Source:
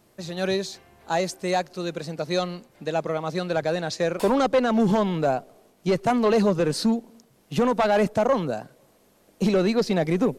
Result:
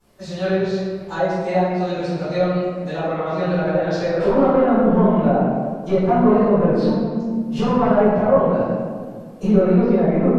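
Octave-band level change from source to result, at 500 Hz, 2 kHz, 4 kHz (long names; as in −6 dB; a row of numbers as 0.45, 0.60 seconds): +6.0, +1.5, −4.5 decibels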